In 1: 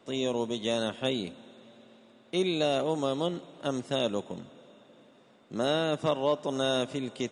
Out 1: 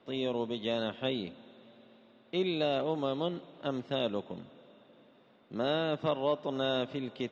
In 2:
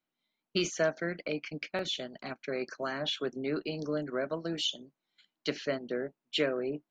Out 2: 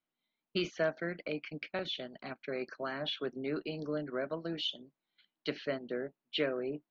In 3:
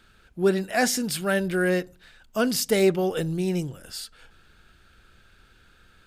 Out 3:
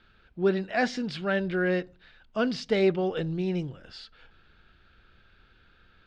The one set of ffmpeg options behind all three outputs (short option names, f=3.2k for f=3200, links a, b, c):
-af "lowpass=f=4.3k:w=0.5412,lowpass=f=4.3k:w=1.3066,volume=-3dB"